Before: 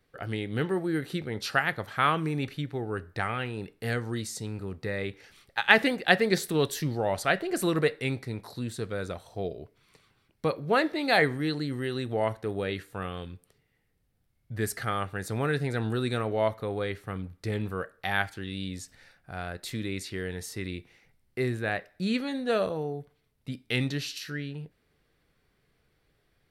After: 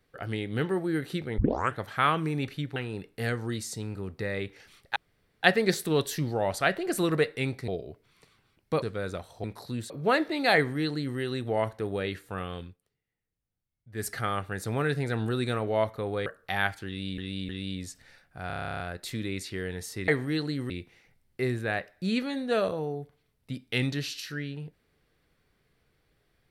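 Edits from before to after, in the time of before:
0:01.38: tape start 0.41 s
0:02.76–0:03.40: remove
0:05.60–0:06.07: fill with room tone
0:08.32–0:08.78: swap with 0:09.40–0:10.54
0:11.20–0:11.82: duplicate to 0:20.68
0:13.27–0:14.71: duck −14.5 dB, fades 0.15 s
0:16.90–0:17.81: remove
0:18.42–0:18.73: repeat, 3 plays
0:19.40: stutter 0.03 s, 12 plays

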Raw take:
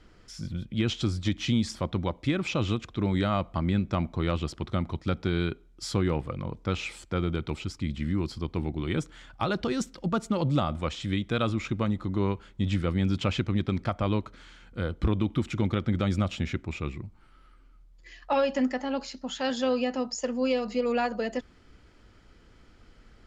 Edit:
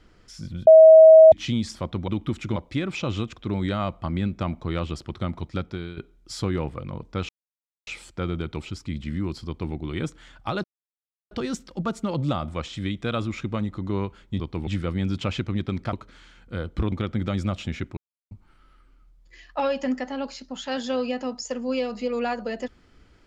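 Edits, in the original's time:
0:00.67–0:01.32: beep over 639 Hz −6 dBFS
0:05.06–0:05.49: fade out linear, to −14 dB
0:06.81: splice in silence 0.58 s
0:08.41–0:08.68: duplicate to 0:12.67
0:09.58: splice in silence 0.67 s
0:13.93–0:14.18: remove
0:15.17–0:15.65: move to 0:02.08
0:16.70–0:17.04: silence

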